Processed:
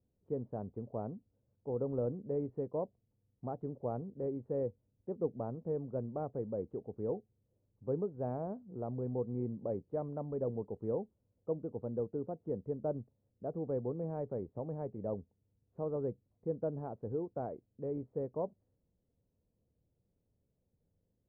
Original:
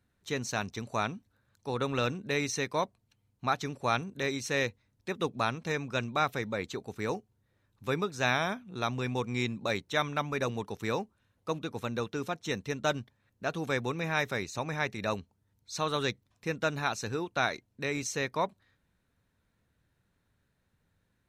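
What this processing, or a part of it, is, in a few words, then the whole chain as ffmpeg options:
under water: -af "lowpass=f=660:w=0.5412,lowpass=f=660:w=1.3066,equalizer=f=480:t=o:w=0.4:g=4.5,volume=0.596"

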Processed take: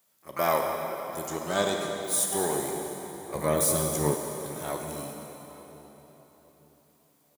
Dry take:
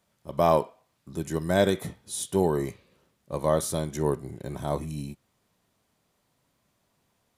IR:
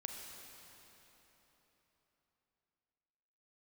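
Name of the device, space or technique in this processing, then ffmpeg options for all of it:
shimmer-style reverb: -filter_complex "[0:a]aemphasis=mode=production:type=bsi,asplit=3[s0][s1][s2];[s0]afade=t=out:st=1.26:d=0.02[s3];[s1]lowpass=f=7800:w=0.5412,lowpass=f=7800:w=1.3066,afade=t=in:st=1.26:d=0.02,afade=t=out:st=1.99:d=0.02[s4];[s2]afade=t=in:st=1.99:d=0.02[s5];[s3][s4][s5]amix=inputs=3:normalize=0,asplit=2[s6][s7];[s7]asetrate=88200,aresample=44100,atempo=0.5,volume=0.355[s8];[s6][s8]amix=inputs=2:normalize=0[s9];[1:a]atrim=start_sample=2205[s10];[s9][s10]afir=irnorm=-1:irlink=0,asettb=1/sr,asplit=3[s11][s12][s13];[s11]atrim=end=3.354[s14];[s12]atrim=start=3.35:end=4.15,asetpts=PTS-STARTPTS,afade=t=in:d=0.004:c=qsin,afade=t=out:st=0.796:d=0.004:c=qsin,lowshelf=f=300:g=11.5[s15];[s13]atrim=start=4.146[s16];[s14][s15]acrossfade=d=0.004:c1=hsin:c2=qsin[s17];[s17][s16]acrossfade=d=0.004:c1=qsin:c2=hsin,asplit=2[s18][s19];[s19]adelay=865,lowpass=f=1100:p=1,volume=0.126,asplit=2[s20][s21];[s21]adelay=865,lowpass=f=1100:p=1,volume=0.33,asplit=2[s22][s23];[s23]adelay=865,lowpass=f=1100:p=1,volume=0.33[s24];[s18][s20][s22][s24]amix=inputs=4:normalize=0"

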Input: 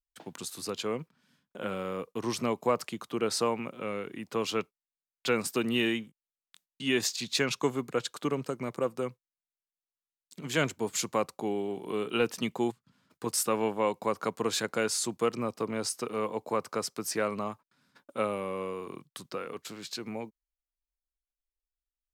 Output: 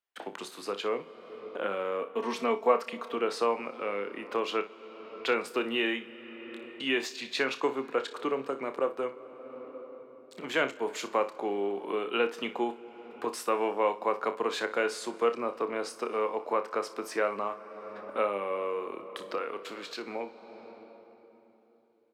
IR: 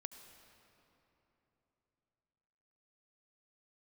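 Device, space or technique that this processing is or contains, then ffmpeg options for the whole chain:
ducked reverb: -filter_complex "[0:a]highpass=f=190:p=1,asettb=1/sr,asplit=3[s0][s1][s2];[s0]atrim=end=2.014[s3];[s1]atrim=start=2.01:end=3.17,asetpts=PTS-STARTPTS,afade=t=in:d=0.004:c=qsin,afade=t=out:st=1.156:d=0.004:c=qsin,aecho=1:1:4.4:0.77,atrim=end_sample=51156[s4];[s2]atrim=start=3.166[s5];[s3][s4]acrossfade=d=0.004:c1=hsin:c2=qsin[s6];[s6][s5]acrossfade=d=0.004:c1=qsin:c2=hsin,asplit=3[s7][s8][s9];[1:a]atrim=start_sample=2205[s10];[s8][s10]afir=irnorm=-1:irlink=0[s11];[s9]apad=whole_len=976356[s12];[s11][s12]sidechaincompress=threshold=0.00447:ratio=5:attack=43:release=481,volume=3.98[s13];[s7][s13]amix=inputs=2:normalize=0,acrossover=split=280 3300:gain=0.126 1 0.158[s14][s15][s16];[s14][s15][s16]amix=inputs=3:normalize=0,aecho=1:1:30|60:0.299|0.178"

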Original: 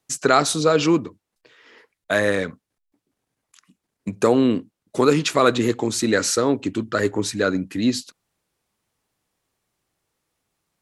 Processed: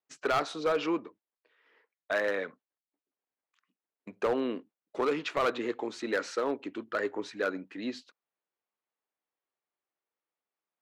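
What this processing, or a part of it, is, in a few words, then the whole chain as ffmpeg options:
walkie-talkie: -af "highpass=400,lowpass=2700,asoftclip=type=hard:threshold=0.188,agate=range=0.447:threshold=0.00447:ratio=16:detection=peak,volume=0.422"

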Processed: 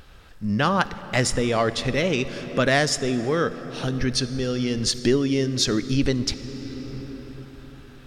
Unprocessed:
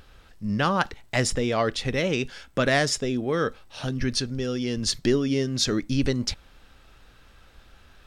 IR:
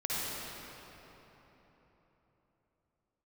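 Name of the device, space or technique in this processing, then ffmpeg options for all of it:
ducked reverb: -filter_complex "[0:a]asplit=3[s0][s1][s2];[1:a]atrim=start_sample=2205[s3];[s1][s3]afir=irnorm=-1:irlink=0[s4];[s2]apad=whole_len=355849[s5];[s4][s5]sidechaincompress=threshold=0.0355:ratio=8:attack=20:release=890,volume=0.299[s6];[s0][s6]amix=inputs=2:normalize=0,volume=1.19"

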